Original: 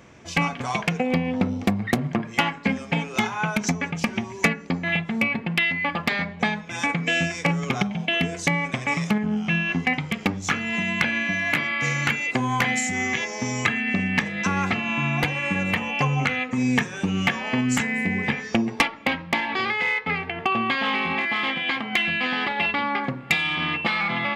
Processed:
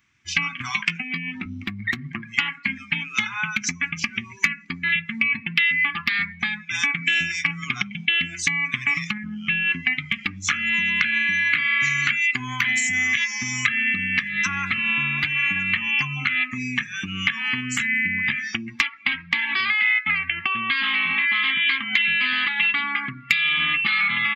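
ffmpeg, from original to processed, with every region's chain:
ffmpeg -i in.wav -filter_complex "[0:a]asettb=1/sr,asplit=3[link_01][link_02][link_03];[link_01]atrim=end=0.704[link_04];[link_02]atrim=start=0.7:end=1.46,asetpts=PTS-STARTPTS,afade=type=in:duration=0.004:curve=qsin,afade=type=out:start_time=0.756:duration=0.004:curve=qsin,highpass=150,asplit=2[link_05][link_06];[link_06]adelay=18,volume=-9dB[link_07];[link_05][link_07]amix=inputs=2:normalize=0,atrim=end_sample=33516[link_08];[link_03]atrim=start=1.456[link_09];[link_04][link_08]acrossfade=duration=0.004:curve1=hsin:curve2=qsin[link_10];[link_10][link_09]acrossfade=duration=0.004:curve1=qsin:curve2=hsin,acompressor=threshold=-24dB:ratio=6,firequalizer=gain_entry='entry(110,0);entry(160,-4);entry(240,-3);entry(350,-7);entry(510,-28);entry(730,-11);entry(1200,4);entry(2100,10);entry(9900,5);entry(15000,13)':delay=0.05:min_phase=1,afftdn=noise_reduction=19:noise_floor=-33,volume=-1dB" out.wav

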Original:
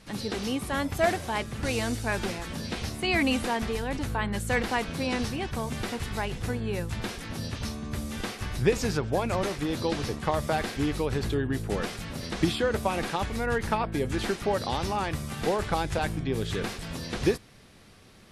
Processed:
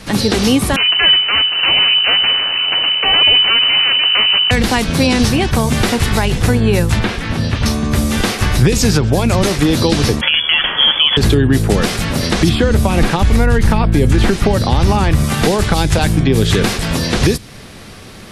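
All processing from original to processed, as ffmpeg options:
ffmpeg -i in.wav -filter_complex "[0:a]asettb=1/sr,asplit=3[link_01][link_02][link_03];[link_01]atrim=end=0.764[link_04];[link_02]atrim=start=0.76:end=4.51,asetpts=PTS-STARTPTS,afade=type=in:duration=0.004:curve=qsin,afade=type=out:start_time=3.746:duration=0.004:curve=qsin,aeval=exprs='abs(val(0))':channel_layout=same,lowpass=frequency=2600:width_type=q:width=0.5098,lowpass=frequency=2600:width_type=q:width=0.6013,lowpass=frequency=2600:width_type=q:width=0.9,lowpass=frequency=2600:width_type=q:width=2.563,afreqshift=-3000[link_05];[link_03]atrim=start=4.506[link_06];[link_04][link_05]acrossfade=duration=0.004:curve1=hsin:curve2=qsin[link_07];[link_07][link_06]acrossfade=duration=0.004:curve1=qsin:curve2=hsin,asettb=1/sr,asplit=3[link_08][link_09][link_10];[link_08]atrim=end=6.994[link_11];[link_09]atrim=start=6.99:end=7.66,asetpts=PTS-STARTPTS,afade=type=in:duration=0.004:curve=qsin,afade=type=out:start_time=0.666:duration=0.004:curve=qsin,equalizer=frequency=490:width=0.41:gain=-3.5,acrossover=split=3700[link_12][link_13];[link_13]acompressor=threshold=-57dB:ratio=4:attack=1:release=60[link_14];[link_12][link_14]amix=inputs=2:normalize=0,lowpass=frequency=12000:width=0.5412,lowpass=frequency=12000:width=1.3066[link_15];[link_10]atrim=start=7.656[link_16];[link_11][link_15]acrossfade=duration=0.004:curve1=hsin:curve2=qsin[link_17];[link_17][link_16]acrossfade=duration=0.004:curve1=qsin:curve2=hsin,asettb=1/sr,asplit=3[link_18][link_19][link_20];[link_18]atrim=end=10.214[link_21];[link_19]atrim=start=10.21:end=11.17,asetpts=PTS-STARTPTS,afade=type=in:duration=0.004:curve=qsin,afade=type=out:start_time=0.956:duration=0.004:curve=qsin,highpass=frequency=120:poles=1,aemphasis=mode=production:type=75fm,lowpass=frequency=3000:width_type=q:width=0.5098,lowpass=frequency=3000:width_type=q:width=0.6013,lowpass=frequency=3000:width_type=q:width=0.9,lowpass=frequency=3000:width_type=q:width=2.563,afreqshift=-3500[link_22];[link_20]atrim=start=11.166[link_23];[link_21][link_22]acrossfade=duration=0.004:curve1=hsin:curve2=qsin[link_24];[link_24][link_23]acrossfade=duration=0.004:curve1=qsin:curve2=hsin,asettb=1/sr,asplit=3[link_25][link_26][link_27];[link_25]atrim=end=12.494[link_28];[link_26]atrim=start=12.49:end=15.24,asetpts=PTS-STARTPTS,afade=type=in:duration=0.004:curve=qsin,afade=type=out:start_time=2.746:duration=0.004:curve=qsin,acrossover=split=2700[link_29][link_30];[link_30]acompressor=threshold=-44dB:ratio=4:attack=1:release=60[link_31];[link_29][link_31]amix=inputs=2:normalize=0,lowshelf=frequency=82:gain=10[link_32];[link_27]atrim=start=15.236[link_33];[link_28][link_32]acrossfade=duration=0.004:curve1=hsin:curve2=qsin[link_34];[link_34][link_33]acrossfade=duration=0.004:curve1=qsin:curve2=hsin,acrossover=split=280|3000[link_35][link_36][link_37];[link_36]acompressor=threshold=-34dB:ratio=6[link_38];[link_35][link_38][link_37]amix=inputs=3:normalize=0,alimiter=level_in=20dB:limit=-1dB:release=50:level=0:latency=1,volume=-1dB" out.wav

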